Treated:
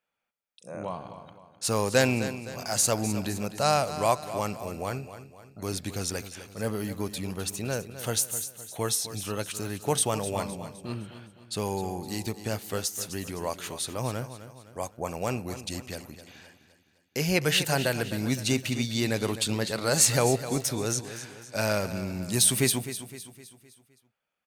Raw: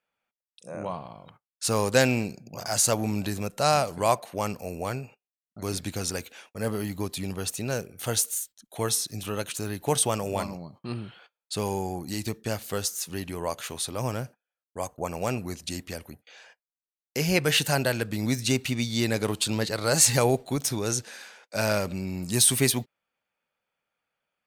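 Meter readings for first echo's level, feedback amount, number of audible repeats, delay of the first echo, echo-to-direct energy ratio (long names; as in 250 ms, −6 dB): −12.5 dB, 46%, 4, 257 ms, −11.5 dB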